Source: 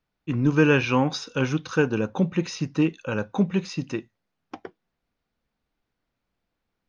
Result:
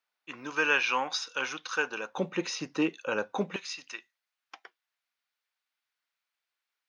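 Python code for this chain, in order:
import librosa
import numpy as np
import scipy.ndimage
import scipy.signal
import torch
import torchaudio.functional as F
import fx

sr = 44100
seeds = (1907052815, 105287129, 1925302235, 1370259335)

y = fx.highpass(x, sr, hz=fx.steps((0.0, 910.0), (2.18, 410.0), (3.56, 1500.0)), slope=12)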